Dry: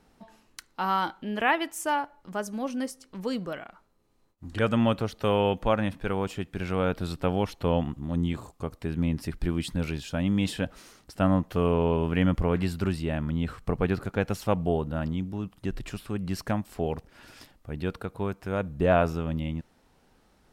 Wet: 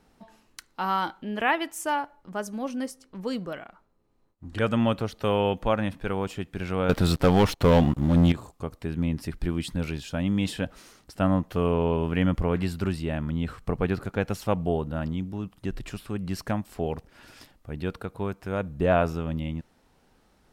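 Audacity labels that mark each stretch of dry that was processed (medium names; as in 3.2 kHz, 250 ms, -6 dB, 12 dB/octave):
0.890000	4.530000	tape noise reduction on one side only decoder only
6.890000	8.320000	waveshaping leveller passes 3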